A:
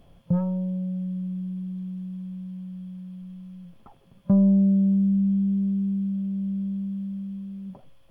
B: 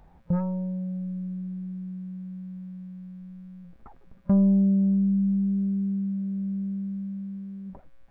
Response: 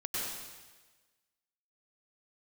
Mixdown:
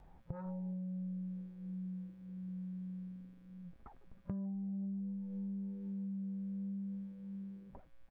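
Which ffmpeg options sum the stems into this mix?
-filter_complex "[0:a]afwtdn=0.0224,flanger=delay=5.4:depth=5.2:regen=28:speed=0.54:shape=sinusoidal,volume=-4dB[a];[1:a]volume=-1,adelay=1,volume=-6dB[b];[a][b]amix=inputs=2:normalize=0,acompressor=threshold=-39dB:ratio=8"

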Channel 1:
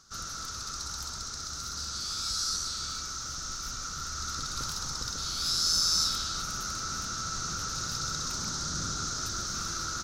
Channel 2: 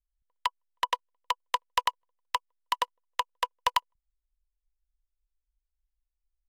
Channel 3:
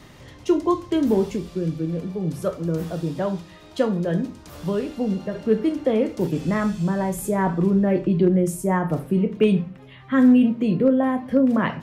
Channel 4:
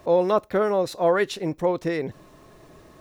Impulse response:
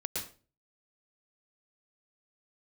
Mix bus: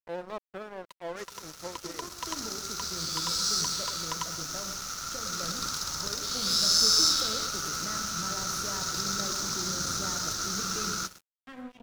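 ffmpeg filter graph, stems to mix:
-filter_complex "[0:a]lowshelf=f=150:g=-10,adelay=1050,volume=2dB,asplit=2[a][b];[b]volume=-7.5dB[c];[1:a]dynaudnorm=f=680:g=3:m=7dB,adelay=450,volume=-17.5dB,asplit=2[d][e];[e]volume=-12.5dB[f];[2:a]equalizer=f=230:w=0.38:g=-6.5,alimiter=limit=-21dB:level=0:latency=1:release=263,adelay=1350,volume=-11.5dB,asplit=2[g][h];[h]volume=-8.5dB[i];[3:a]volume=-14.5dB,asplit=3[j][k][l];[k]volume=-21.5dB[m];[l]apad=whole_len=488789[n];[a][n]sidechaincompress=threshold=-53dB:ratio=8:attack=16:release=226[o];[4:a]atrim=start_sample=2205[p];[c][f][i][m]amix=inputs=4:normalize=0[q];[q][p]afir=irnorm=-1:irlink=0[r];[o][d][g][j][r]amix=inputs=5:normalize=0,aeval=exprs='sgn(val(0))*max(abs(val(0))-0.0126,0)':c=same"

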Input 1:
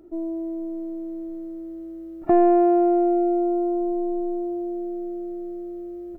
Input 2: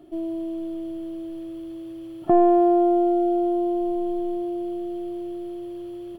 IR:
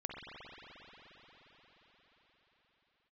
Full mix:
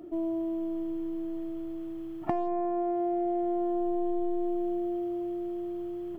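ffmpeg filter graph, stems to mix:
-filter_complex "[0:a]asoftclip=type=hard:threshold=-11dB,highpass=160,acompressor=threshold=-22dB:ratio=6,volume=2dB[a];[1:a]lowpass=2.1k,volume=-4dB,asplit=2[b][c];[c]volume=-7.5dB[d];[2:a]atrim=start_sample=2205[e];[d][e]afir=irnorm=-1:irlink=0[f];[a][b][f]amix=inputs=3:normalize=0,acompressor=threshold=-26dB:ratio=6"

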